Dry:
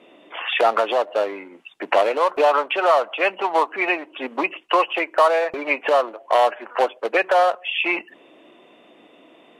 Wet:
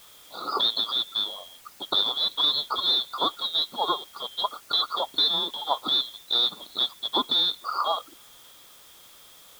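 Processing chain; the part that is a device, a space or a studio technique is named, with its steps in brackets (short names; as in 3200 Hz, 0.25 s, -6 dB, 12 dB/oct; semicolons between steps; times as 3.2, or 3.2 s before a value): split-band scrambled radio (four-band scrambler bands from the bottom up 2413; BPF 310–3200 Hz; white noise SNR 24 dB); gain -3 dB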